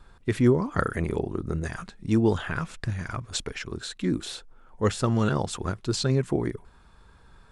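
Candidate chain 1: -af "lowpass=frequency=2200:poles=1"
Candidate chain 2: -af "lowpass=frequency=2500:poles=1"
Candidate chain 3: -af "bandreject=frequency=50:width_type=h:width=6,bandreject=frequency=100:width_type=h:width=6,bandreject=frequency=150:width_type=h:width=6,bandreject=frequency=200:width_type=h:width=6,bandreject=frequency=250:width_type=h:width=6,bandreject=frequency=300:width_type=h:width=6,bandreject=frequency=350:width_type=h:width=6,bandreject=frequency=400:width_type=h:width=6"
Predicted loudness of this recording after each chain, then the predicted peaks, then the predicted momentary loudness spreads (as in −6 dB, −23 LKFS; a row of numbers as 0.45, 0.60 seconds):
−28.0, −28.0, −28.0 LKFS; −8.5, −8.5, −8.0 dBFS; 14, 13, 12 LU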